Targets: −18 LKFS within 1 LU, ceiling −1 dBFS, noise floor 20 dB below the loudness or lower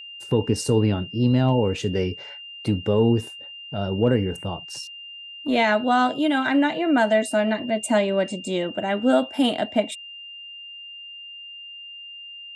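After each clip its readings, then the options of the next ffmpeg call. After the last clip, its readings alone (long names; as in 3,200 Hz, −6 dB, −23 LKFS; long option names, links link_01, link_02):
interfering tone 2,800 Hz; level of the tone −37 dBFS; integrated loudness −22.5 LKFS; sample peak −8.5 dBFS; target loudness −18.0 LKFS
→ -af "bandreject=frequency=2800:width=30"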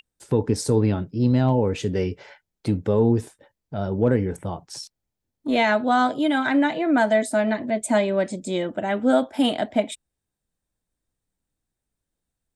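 interfering tone none found; integrated loudness −22.5 LKFS; sample peak −8.5 dBFS; target loudness −18.0 LKFS
→ -af "volume=4.5dB"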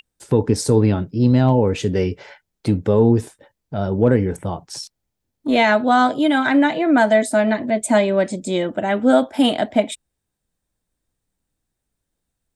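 integrated loudness −18.0 LKFS; sample peak −4.0 dBFS; background noise floor −79 dBFS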